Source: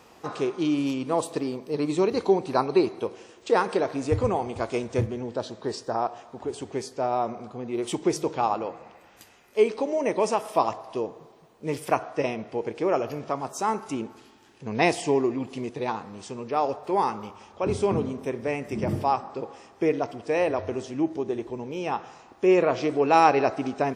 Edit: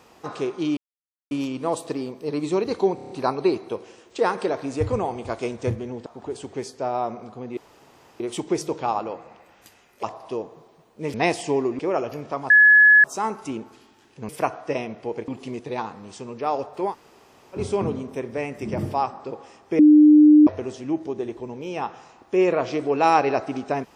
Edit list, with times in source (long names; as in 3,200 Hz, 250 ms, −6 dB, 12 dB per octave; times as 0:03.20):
0:00.77: splice in silence 0.54 s
0:02.41: stutter 0.03 s, 6 plays
0:05.37–0:06.24: remove
0:07.75: splice in room tone 0.63 s
0:09.58–0:10.67: remove
0:11.78–0:12.77: swap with 0:14.73–0:15.38
0:13.48: insert tone 1,700 Hz −9 dBFS 0.54 s
0:17.00–0:17.67: fill with room tone, crossfade 0.10 s
0:19.89–0:20.57: beep over 301 Hz −8 dBFS